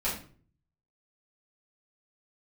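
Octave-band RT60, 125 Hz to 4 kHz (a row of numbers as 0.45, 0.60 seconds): 0.85, 0.60, 0.50, 0.40, 0.40, 0.35 seconds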